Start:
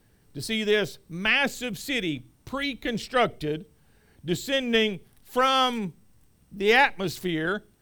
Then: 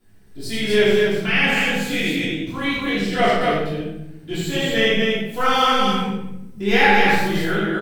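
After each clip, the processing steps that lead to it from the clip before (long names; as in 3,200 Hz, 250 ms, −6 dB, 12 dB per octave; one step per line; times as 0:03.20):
chorus effect 2.8 Hz, delay 18.5 ms, depth 2.6 ms
on a send: loudspeakers that aren't time-aligned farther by 27 metres −4 dB, 84 metres −2 dB
on the sum: rectangular room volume 260 cubic metres, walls mixed, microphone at 3.1 metres
level −3 dB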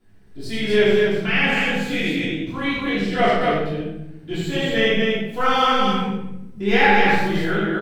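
high-shelf EQ 6,000 Hz −11.5 dB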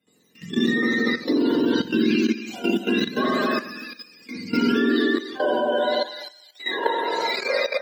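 frequency axis turned over on the octave scale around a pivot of 880 Hz
output level in coarse steps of 13 dB
high-pass filter sweep 220 Hz → 630 Hz, 0:04.56–0:06.49
level +2 dB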